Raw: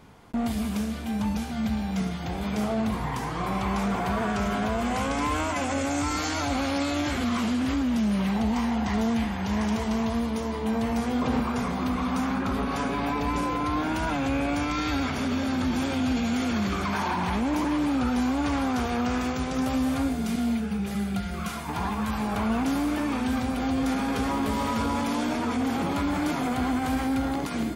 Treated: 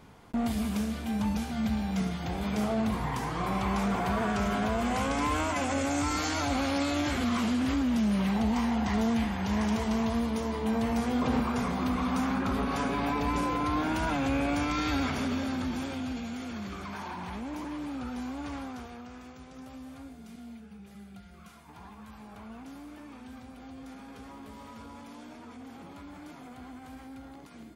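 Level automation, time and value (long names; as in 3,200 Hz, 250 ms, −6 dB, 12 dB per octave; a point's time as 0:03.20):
0:15.10 −2 dB
0:16.37 −11.5 dB
0:18.57 −11.5 dB
0:19.08 −19.5 dB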